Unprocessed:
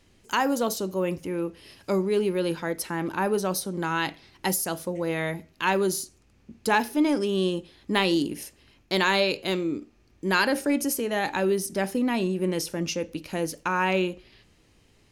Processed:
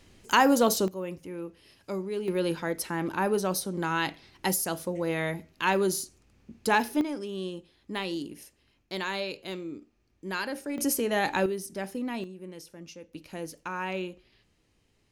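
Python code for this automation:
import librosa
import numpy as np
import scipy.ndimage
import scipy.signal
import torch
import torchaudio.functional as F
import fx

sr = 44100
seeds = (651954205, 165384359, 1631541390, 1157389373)

y = fx.gain(x, sr, db=fx.steps((0.0, 3.5), (0.88, -8.5), (2.28, -1.5), (7.01, -10.0), (10.78, 0.0), (11.46, -8.0), (12.24, -16.5), (13.14, -9.0)))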